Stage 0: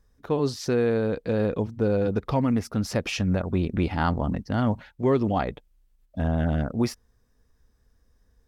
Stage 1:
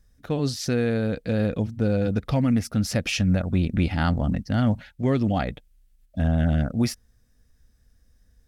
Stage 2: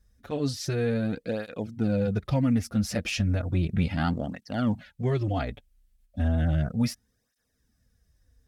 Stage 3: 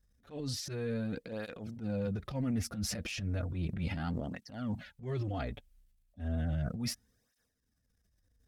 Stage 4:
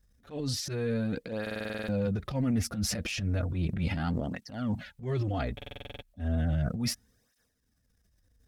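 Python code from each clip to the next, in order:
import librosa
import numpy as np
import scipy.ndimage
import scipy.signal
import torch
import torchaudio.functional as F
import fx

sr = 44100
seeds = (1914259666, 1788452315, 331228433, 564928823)

y1 = fx.graphic_eq_15(x, sr, hz=(400, 1000, 10000), db=(-9, -11, 3))
y1 = y1 * librosa.db_to_amplitude(4.0)
y2 = fx.flanger_cancel(y1, sr, hz=0.34, depth_ms=7.8)
y2 = y2 * librosa.db_to_amplitude(-1.0)
y3 = fx.transient(y2, sr, attack_db=-11, sustain_db=8)
y3 = y3 * librosa.db_to_amplitude(-8.5)
y4 = fx.buffer_glitch(y3, sr, at_s=(1.42, 5.56), block=2048, repeats=9)
y4 = y4 * librosa.db_to_amplitude(5.0)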